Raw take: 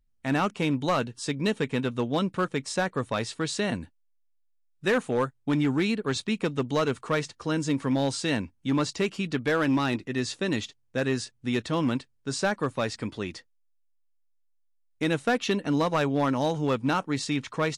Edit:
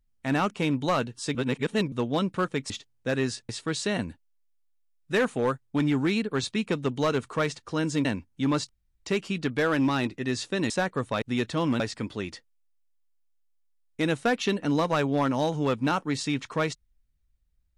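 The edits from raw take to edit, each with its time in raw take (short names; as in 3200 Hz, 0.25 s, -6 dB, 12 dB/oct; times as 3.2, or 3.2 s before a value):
1.35–1.92 reverse
2.7–3.22 swap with 10.59–11.38
7.78–8.31 cut
8.95 insert room tone 0.37 s
11.96–12.82 cut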